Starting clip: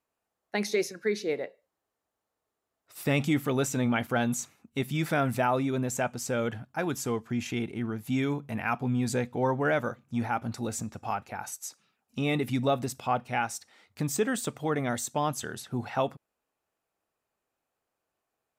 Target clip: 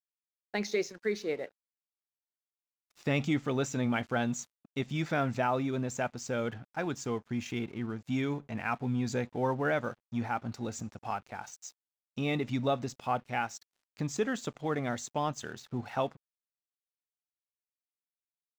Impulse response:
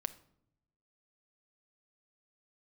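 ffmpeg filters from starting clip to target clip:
-af "aresample=16000,aresample=44100,aeval=exprs='sgn(val(0))*max(abs(val(0))-0.00251,0)':channel_layout=same,volume=-3dB"

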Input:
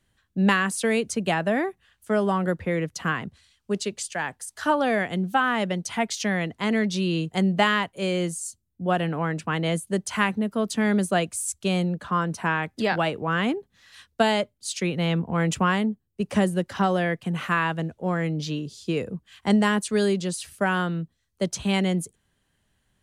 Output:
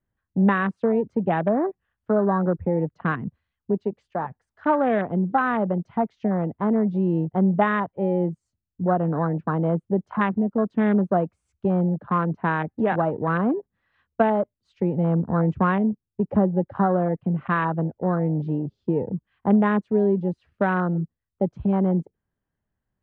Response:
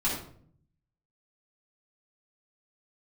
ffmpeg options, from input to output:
-filter_complex "[0:a]lowpass=1500,afwtdn=0.0316,aemphasis=mode=reproduction:type=50kf,asplit=2[link_01][link_02];[link_02]acompressor=threshold=-31dB:ratio=6,volume=1.5dB[link_03];[link_01][link_03]amix=inputs=2:normalize=0"

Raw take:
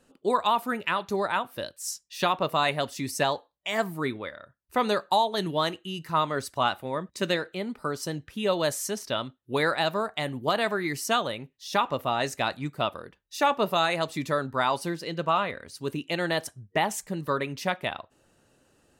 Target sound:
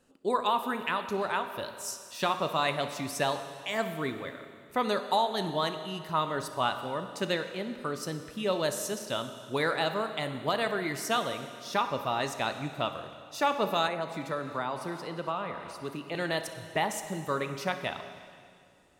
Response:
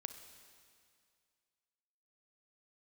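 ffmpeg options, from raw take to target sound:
-filter_complex "[1:a]atrim=start_sample=2205[link_01];[0:a][link_01]afir=irnorm=-1:irlink=0,asettb=1/sr,asplit=3[link_02][link_03][link_04];[link_02]atrim=end=13.874[link_05];[link_03]atrim=start=13.87:end=16.15,asetpts=PTS-STARTPTS,afade=type=in:duration=0.004:curve=qsin,afade=type=out:start_time=2.276:duration=0.004:curve=qsin,acrossover=split=120|590|1800[link_06][link_07][link_08][link_09];[link_06]acompressor=threshold=-59dB:ratio=4[link_10];[link_07]acompressor=threshold=-35dB:ratio=4[link_11];[link_08]acompressor=threshold=-33dB:ratio=4[link_12];[link_09]acompressor=threshold=-47dB:ratio=4[link_13];[link_10][link_11][link_12][link_13]amix=inputs=4:normalize=0[link_14];[link_04]atrim=start=16.146[link_15];[link_05][link_14]acrossfade=duration=0.004:curve1=hsin:curve2=qsin[link_16];[link_16][link_15]acrossfade=duration=0.004:curve1=qsin:curve2=hsin"

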